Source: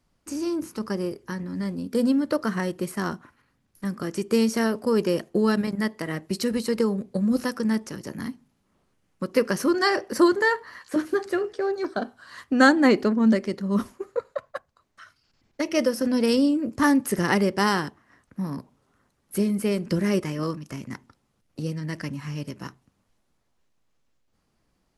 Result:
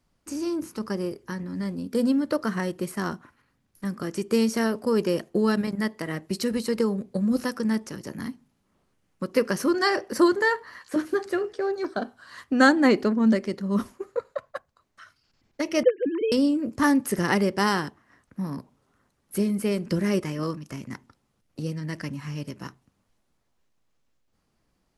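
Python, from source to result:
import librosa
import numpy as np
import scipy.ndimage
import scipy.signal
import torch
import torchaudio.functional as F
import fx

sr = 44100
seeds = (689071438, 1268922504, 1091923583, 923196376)

y = fx.sine_speech(x, sr, at=(15.83, 16.32))
y = y * librosa.db_to_amplitude(-1.0)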